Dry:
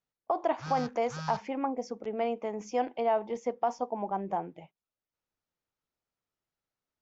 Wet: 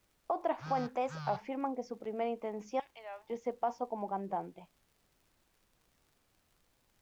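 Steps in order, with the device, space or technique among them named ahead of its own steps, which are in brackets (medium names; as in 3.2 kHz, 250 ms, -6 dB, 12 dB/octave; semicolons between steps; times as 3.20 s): 2.80–3.30 s: Bessel high-pass 2.1 kHz, order 2; distance through air 82 m; warped LP (warped record 33 1/3 rpm, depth 160 cents; crackle; pink noise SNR 35 dB); trim -4 dB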